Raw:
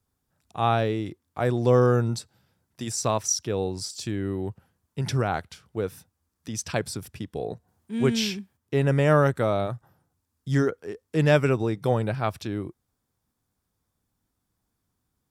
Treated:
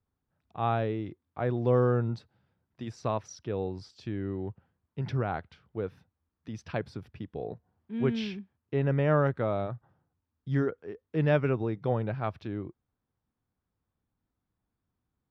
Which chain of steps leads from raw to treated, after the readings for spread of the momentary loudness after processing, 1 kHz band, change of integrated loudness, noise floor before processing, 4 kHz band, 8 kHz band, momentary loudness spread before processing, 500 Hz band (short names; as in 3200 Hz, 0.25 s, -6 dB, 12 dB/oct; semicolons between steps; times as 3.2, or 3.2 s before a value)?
17 LU, -6.0 dB, -5.5 dB, -79 dBFS, -13.5 dB, under -20 dB, 16 LU, -5.5 dB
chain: air absorption 310 m; gain -4.5 dB